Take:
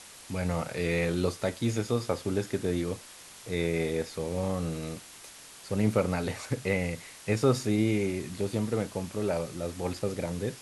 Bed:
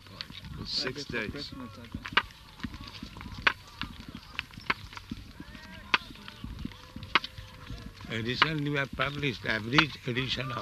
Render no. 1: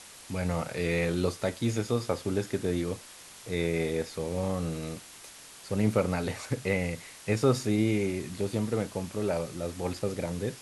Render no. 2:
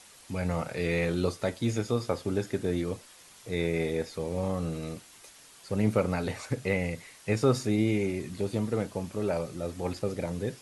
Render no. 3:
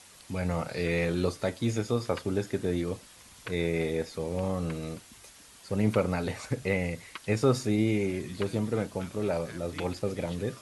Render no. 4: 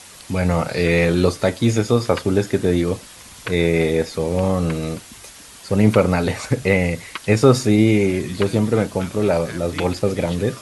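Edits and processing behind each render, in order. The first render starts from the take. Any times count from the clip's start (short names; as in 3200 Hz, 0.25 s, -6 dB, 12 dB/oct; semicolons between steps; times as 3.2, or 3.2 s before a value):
nothing audible
denoiser 6 dB, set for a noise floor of -49 dBFS
add bed -18.5 dB
gain +11.5 dB; limiter -1 dBFS, peak gain reduction 1 dB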